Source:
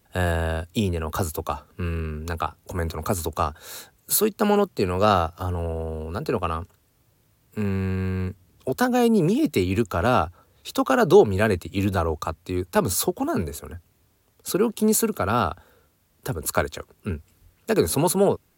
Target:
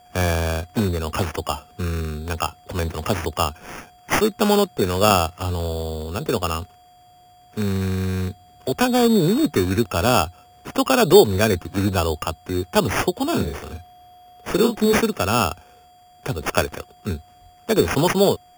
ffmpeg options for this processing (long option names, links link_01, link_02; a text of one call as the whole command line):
ffmpeg -i in.wav -filter_complex "[0:a]aeval=exprs='val(0)+0.00282*sin(2*PI*720*n/s)':channel_layout=same,acrusher=samples=11:mix=1:aa=0.000001,asettb=1/sr,asplit=3[link_01][link_02][link_03];[link_01]atrim=end=13.284[link_04];[link_02]atrim=start=13.28:end=14.98,asetpts=PTS-STARTPTS,afade=type=in:duration=0.004:curve=qsin,afade=type=out:start_time=1.696:duration=0.004:curve=qsin,asplit=2[link_05][link_06];[link_06]adelay=39,volume=-5dB[link_07];[link_05][link_07]amix=inputs=2:normalize=0,atrim=end_sample=74970[link_08];[link_03]atrim=start=14.976[link_09];[link_04][link_08]acrossfade=duration=0.004:curve1=hsin:curve2=qsin[link_10];[link_10][link_09]acrossfade=duration=0.004:curve1=qsin:curve2=hsin,volume=2.5dB" out.wav